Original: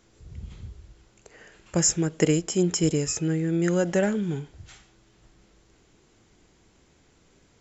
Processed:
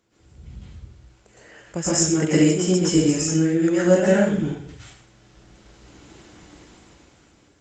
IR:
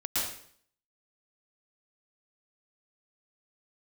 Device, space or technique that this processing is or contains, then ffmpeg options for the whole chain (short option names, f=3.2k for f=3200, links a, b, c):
far-field microphone of a smart speaker: -filter_complex "[1:a]atrim=start_sample=2205[a];[0:a][a]afir=irnorm=-1:irlink=0,highpass=f=93:p=1,dynaudnorm=f=510:g=5:m=15dB,volume=-4dB" -ar 48000 -c:a libopus -b:a 32k